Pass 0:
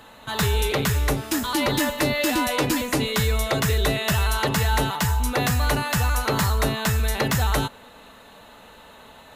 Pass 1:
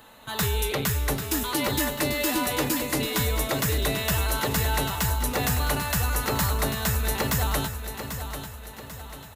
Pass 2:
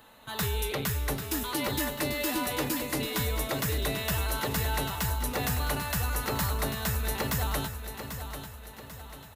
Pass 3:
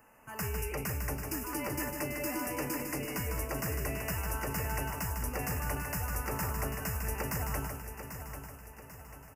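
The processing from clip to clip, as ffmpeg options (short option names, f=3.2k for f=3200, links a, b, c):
-af "highshelf=f=10k:g=10.5,aecho=1:1:792|1584|2376|3168|3960:0.355|0.163|0.0751|0.0345|0.0159,volume=-4.5dB"
-af "equalizer=f=7.2k:t=o:w=0.45:g=-2.5,volume=-4.5dB"
-af "asuperstop=centerf=3700:order=12:qfactor=1.9,aecho=1:1:152:0.501,volume=-5.5dB"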